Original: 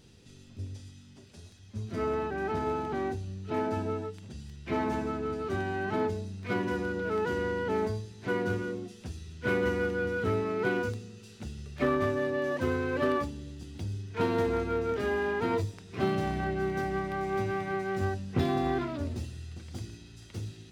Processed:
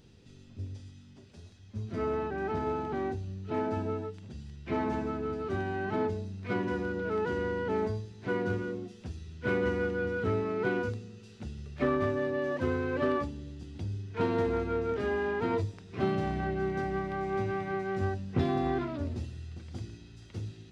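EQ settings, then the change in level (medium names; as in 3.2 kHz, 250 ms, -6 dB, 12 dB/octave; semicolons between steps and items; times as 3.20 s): tape spacing loss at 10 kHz 21 dB; treble shelf 4.9 kHz +10.5 dB; 0.0 dB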